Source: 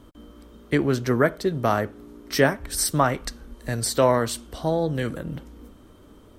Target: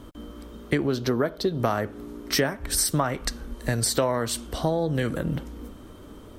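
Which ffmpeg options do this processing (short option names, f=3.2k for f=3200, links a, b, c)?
-filter_complex "[0:a]asettb=1/sr,asplit=3[a][b][c];[a]atrim=end=0.874[d];[b]atrim=start=0.87:end=1.6,asetpts=PTS-STARTPTS,afade=t=in:d=0.004:c=qsin,afade=t=out:st=0.726:d=0.004:c=qsin,equalizer=f=125:t=o:w=1:g=-4,equalizer=f=2k:t=o:w=1:g=-8,equalizer=f=4k:t=o:w=1:g=7,equalizer=f=8k:t=o:w=1:g=-8[e];[c]atrim=start=1.596[f];[d][e]acrossfade=d=0.004:c1=hsin:c2=qsin[g];[g][f]acrossfade=d=0.004:c1=qsin:c2=hsin,acompressor=threshold=-26dB:ratio=6,volume=5.5dB"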